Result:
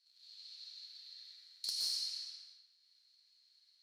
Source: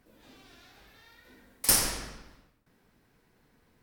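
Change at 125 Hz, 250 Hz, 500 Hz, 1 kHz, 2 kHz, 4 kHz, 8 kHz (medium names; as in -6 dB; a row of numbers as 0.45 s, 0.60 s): under -35 dB, under -35 dB, under -30 dB, under -30 dB, -24.5 dB, -2.5 dB, -18.0 dB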